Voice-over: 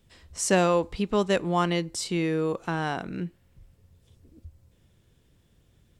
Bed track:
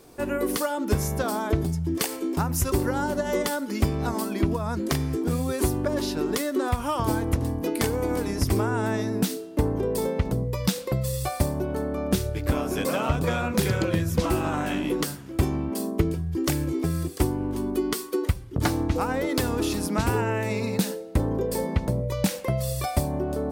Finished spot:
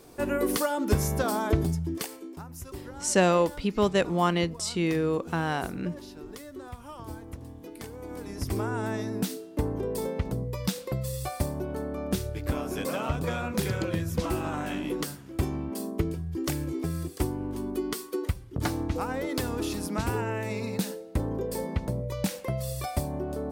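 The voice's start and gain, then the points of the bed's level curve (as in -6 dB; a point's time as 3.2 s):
2.65 s, 0.0 dB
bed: 1.71 s -0.5 dB
2.4 s -16.5 dB
7.89 s -16.5 dB
8.65 s -5 dB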